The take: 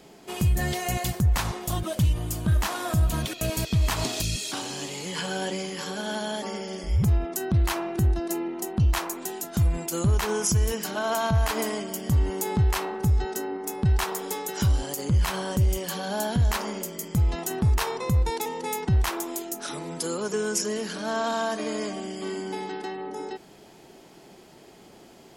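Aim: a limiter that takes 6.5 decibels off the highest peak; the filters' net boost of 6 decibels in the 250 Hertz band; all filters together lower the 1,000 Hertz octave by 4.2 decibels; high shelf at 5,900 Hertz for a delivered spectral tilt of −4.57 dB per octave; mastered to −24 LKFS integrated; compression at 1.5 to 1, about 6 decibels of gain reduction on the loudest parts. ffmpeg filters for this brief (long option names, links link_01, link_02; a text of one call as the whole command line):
ffmpeg -i in.wav -af "equalizer=frequency=250:width_type=o:gain=9,equalizer=frequency=1000:width_type=o:gain=-6.5,highshelf=frequency=5900:gain=7,acompressor=threshold=-33dB:ratio=1.5,volume=6dB,alimiter=limit=-12.5dB:level=0:latency=1" out.wav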